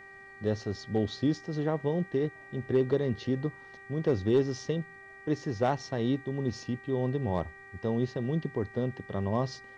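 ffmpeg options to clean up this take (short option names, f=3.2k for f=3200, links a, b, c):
-af "bandreject=f=392.4:t=h:w=4,bandreject=f=784.8:t=h:w=4,bandreject=f=1.1772k:t=h:w=4,bandreject=f=1.5696k:t=h:w=4,bandreject=f=1.962k:t=h:w=4,bandreject=f=2.3544k:t=h:w=4,bandreject=f=1.9k:w=30,agate=range=-21dB:threshold=-42dB"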